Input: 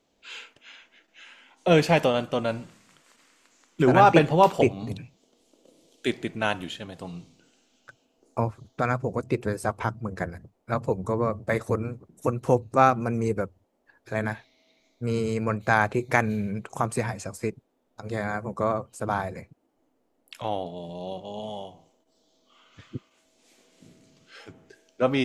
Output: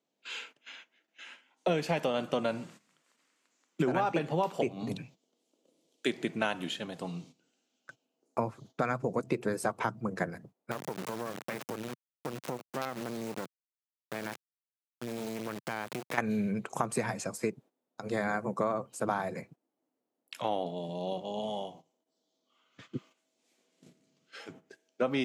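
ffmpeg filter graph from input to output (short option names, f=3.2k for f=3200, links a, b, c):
-filter_complex "[0:a]asettb=1/sr,asplit=3[a][b][c];[a]atrim=end=10.714[d];[b]atrim=start=10.71:end=16.18,asetpts=PTS-STARTPTS,afade=t=in:d=0.004:c=qsin,afade=t=out:st=5.466:d=0.004:c=qsin,acrusher=bits=3:dc=4:mix=0:aa=0.000001,acompressor=threshold=-30dB:ratio=5:attack=3.2:release=140:knee=1:detection=peak[e];[c]atrim=start=16.176[f];[d][e]acrossfade=d=0.004:c1=hsin:c2=qsin[g];[g][f]acrossfade=d=0.004:c1=qsin:c2=hsin,agate=range=-13dB:threshold=-50dB:ratio=16:detection=peak,highpass=f=140:w=0.5412,highpass=f=140:w=1.3066,acompressor=threshold=-25dB:ratio=16"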